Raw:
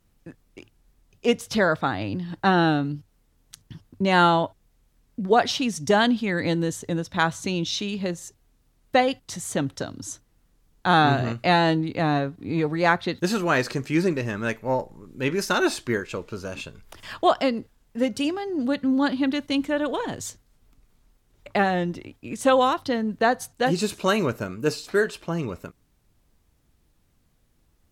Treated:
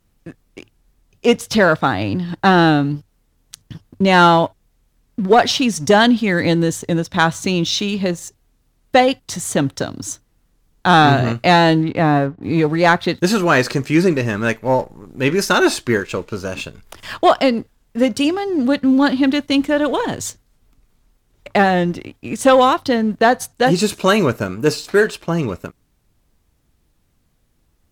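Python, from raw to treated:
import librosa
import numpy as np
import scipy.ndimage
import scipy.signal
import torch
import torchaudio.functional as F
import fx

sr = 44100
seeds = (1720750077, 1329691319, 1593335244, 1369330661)

y = fx.lowpass(x, sr, hz=fx.line((11.83, 3500.0), (12.42, 1600.0)), slope=12, at=(11.83, 12.42), fade=0.02)
y = fx.leveller(y, sr, passes=1)
y = y * 10.0 ** (4.5 / 20.0)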